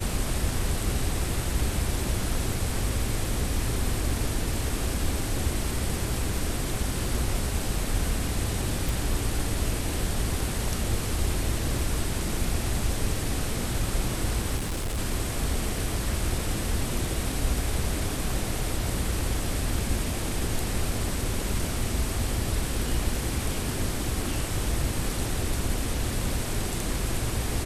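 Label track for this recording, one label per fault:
8.890000	8.890000	pop
14.560000	14.990000	clipped -26 dBFS

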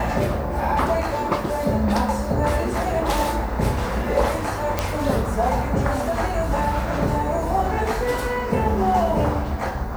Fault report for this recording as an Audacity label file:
4.790000	4.790000	pop -6 dBFS

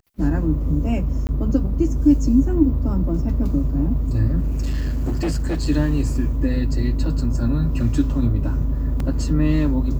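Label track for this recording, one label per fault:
1.270000	1.290000	dropout
4.420000	5.670000	clipped -17.5 dBFS
9.000000	9.000000	dropout 3.1 ms

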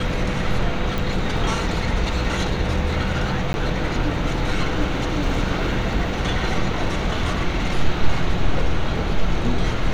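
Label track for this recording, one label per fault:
0.980000	0.980000	pop
3.530000	3.540000	dropout

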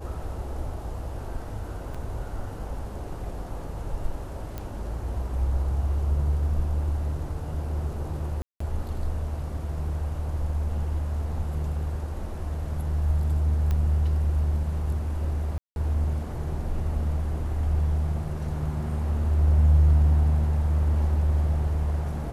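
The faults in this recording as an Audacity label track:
1.940000	1.950000	dropout 5.6 ms
4.580000	4.580000	pop -20 dBFS
8.420000	8.600000	dropout 184 ms
13.710000	13.710000	pop -17 dBFS
15.580000	15.760000	dropout 181 ms

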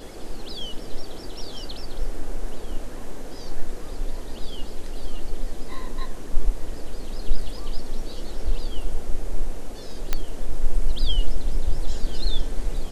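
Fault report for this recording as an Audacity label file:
10.130000	10.130000	pop -7 dBFS

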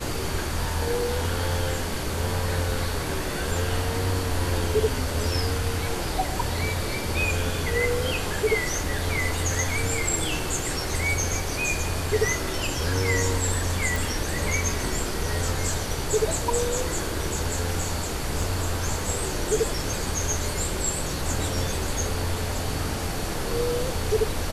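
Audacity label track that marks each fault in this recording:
13.960000	13.960000	pop
18.420000	18.420000	dropout 2.8 ms

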